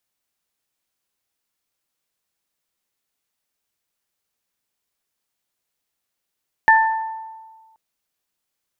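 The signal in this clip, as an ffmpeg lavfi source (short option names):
-f lavfi -i "aevalsrc='0.316*pow(10,-3*t/1.51)*sin(2*PI*888*t)+0.335*pow(10,-3*t/0.72)*sin(2*PI*1776*t)':d=1.08:s=44100"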